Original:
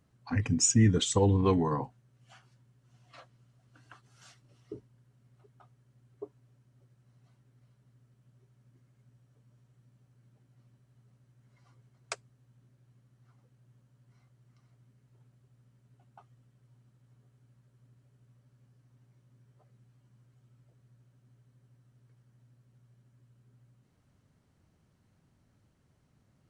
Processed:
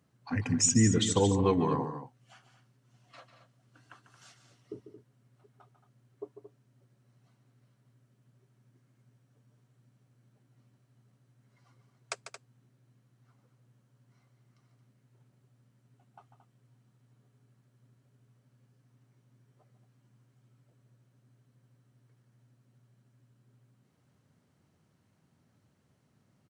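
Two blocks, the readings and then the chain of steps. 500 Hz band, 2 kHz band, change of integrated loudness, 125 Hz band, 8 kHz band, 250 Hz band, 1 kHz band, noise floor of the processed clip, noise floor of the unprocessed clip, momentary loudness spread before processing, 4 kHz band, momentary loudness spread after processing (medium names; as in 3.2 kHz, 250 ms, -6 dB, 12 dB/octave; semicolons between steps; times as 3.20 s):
+0.5 dB, +0.5 dB, -0.5 dB, -2.5 dB, +0.5 dB, +0.5 dB, +0.5 dB, -71 dBFS, -70 dBFS, 20 LU, +0.5 dB, 19 LU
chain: high-pass 110 Hz; on a send: loudspeakers at several distances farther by 50 m -10 dB, 77 m -11 dB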